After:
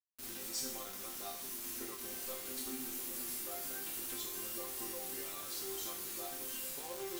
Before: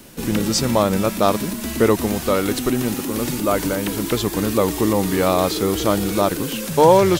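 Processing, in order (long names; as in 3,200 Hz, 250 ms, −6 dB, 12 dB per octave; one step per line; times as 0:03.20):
downward compressor 4 to 1, threshold −17 dBFS, peak gain reduction 8.5 dB
first-order pre-emphasis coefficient 0.8
resonators tuned to a chord C4 sus4, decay 0.56 s
bit reduction 9 bits
level +9.5 dB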